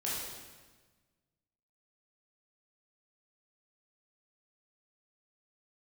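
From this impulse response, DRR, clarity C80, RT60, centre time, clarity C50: −7.5 dB, 2.0 dB, 1.4 s, 91 ms, −1.0 dB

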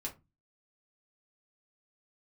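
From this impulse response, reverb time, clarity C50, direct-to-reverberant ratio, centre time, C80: 0.25 s, 15.0 dB, −2.5 dB, 13 ms, 23.0 dB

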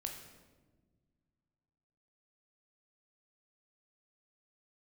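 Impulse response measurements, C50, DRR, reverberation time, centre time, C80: 6.0 dB, 2.0 dB, 1.4 s, 33 ms, 8.0 dB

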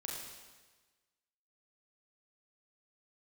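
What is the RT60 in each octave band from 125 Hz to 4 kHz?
1.3, 1.3, 1.3, 1.3, 1.3, 1.3 seconds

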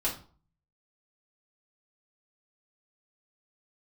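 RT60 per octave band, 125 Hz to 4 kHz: 0.70, 0.50, 0.40, 0.45, 0.30, 0.30 seconds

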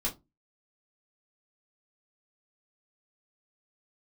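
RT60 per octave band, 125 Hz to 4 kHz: 0.35, 0.30, 0.25, 0.20, 0.15, 0.15 seconds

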